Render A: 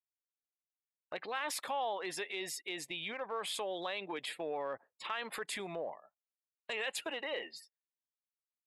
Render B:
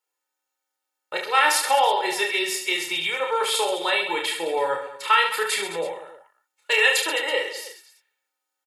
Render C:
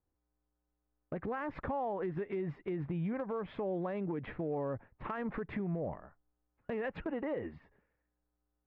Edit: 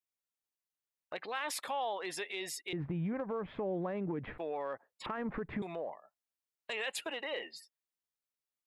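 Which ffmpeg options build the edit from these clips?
-filter_complex "[2:a]asplit=2[a][b];[0:a]asplit=3[c][d][e];[c]atrim=end=2.732[f];[a]atrim=start=2.728:end=4.382[g];[d]atrim=start=4.378:end=5.062[h];[b]atrim=start=5.058:end=5.622[i];[e]atrim=start=5.618[j];[f][g]acrossfade=d=0.004:c1=hsin:c2=hsin[k];[k][h]acrossfade=d=0.004:c1=hsin:c2=hsin[l];[l][i]acrossfade=d=0.004:c1=hsin:c2=hsin[m];[m][j]acrossfade=d=0.004:c1=hsin:c2=hsin"

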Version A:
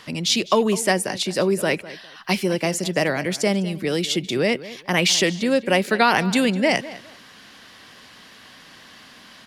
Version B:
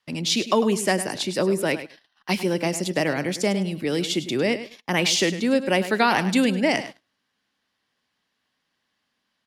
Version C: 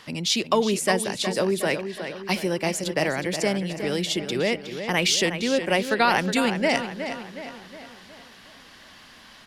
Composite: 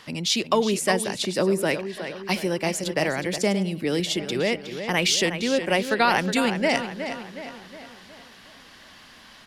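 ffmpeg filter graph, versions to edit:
-filter_complex "[1:a]asplit=2[a][b];[2:a]asplit=3[c][d][e];[c]atrim=end=1.252[f];[a]atrim=start=1.248:end=1.712[g];[d]atrim=start=1.708:end=3.382[h];[b]atrim=start=3.378:end=4.002[i];[e]atrim=start=3.998[j];[f][g]acrossfade=d=0.004:c1=hsin:c2=hsin[k];[k][h]acrossfade=d=0.004:c1=hsin:c2=hsin[l];[l][i]acrossfade=d=0.004:c1=hsin:c2=hsin[m];[m][j]acrossfade=d=0.004:c1=hsin:c2=hsin"

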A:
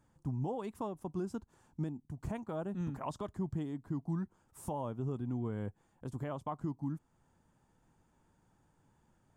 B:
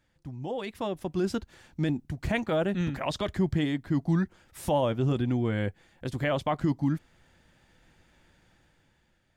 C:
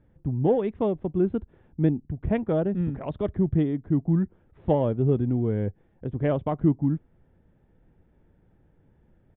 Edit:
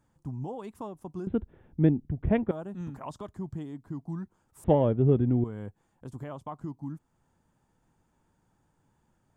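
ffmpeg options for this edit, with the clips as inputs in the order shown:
-filter_complex "[2:a]asplit=2[a][b];[0:a]asplit=3[c][d][e];[c]atrim=end=1.272[f];[a]atrim=start=1.268:end=2.512[g];[d]atrim=start=2.508:end=4.642[h];[b]atrim=start=4.638:end=5.442[i];[e]atrim=start=5.438[j];[f][g]acrossfade=d=0.004:c1=hsin:c2=hsin[k];[k][h]acrossfade=d=0.004:c1=hsin:c2=hsin[l];[l][i]acrossfade=d=0.004:c1=hsin:c2=hsin[m];[m][j]acrossfade=d=0.004:c1=hsin:c2=hsin"

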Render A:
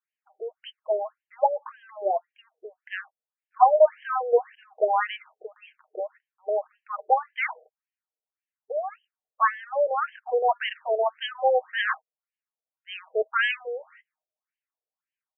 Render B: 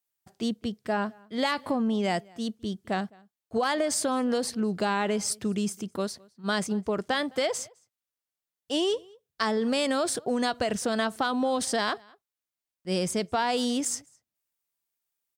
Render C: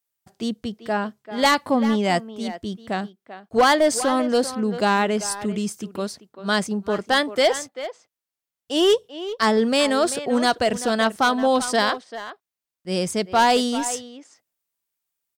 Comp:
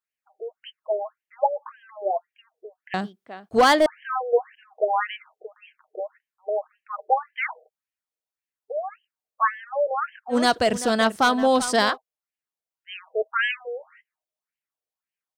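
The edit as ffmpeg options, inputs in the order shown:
-filter_complex "[2:a]asplit=2[a][b];[0:a]asplit=3[c][d][e];[c]atrim=end=2.942[f];[a]atrim=start=2.938:end=3.862[g];[d]atrim=start=3.858:end=10.38[h];[b]atrim=start=10.28:end=11.98[i];[e]atrim=start=11.88[j];[f][g]acrossfade=d=0.004:c1=hsin:c2=hsin[k];[k][h]acrossfade=d=0.004:c1=hsin:c2=hsin[l];[l][i]acrossfade=d=0.1:c1=tri:c2=tri[m];[m][j]acrossfade=d=0.1:c1=tri:c2=tri"

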